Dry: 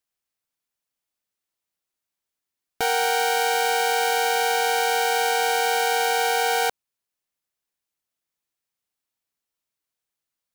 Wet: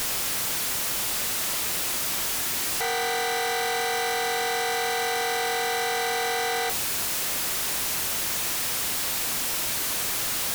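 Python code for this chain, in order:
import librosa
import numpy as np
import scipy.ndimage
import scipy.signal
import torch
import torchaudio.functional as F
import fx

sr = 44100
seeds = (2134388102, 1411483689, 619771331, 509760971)

y = np.sign(x) * np.sqrt(np.mean(np.square(x)))
y = fx.doubler(y, sr, ms=39.0, db=-11)
y = fx.cheby_harmonics(y, sr, harmonics=(6,), levels_db=(-16,), full_scale_db=-23.5)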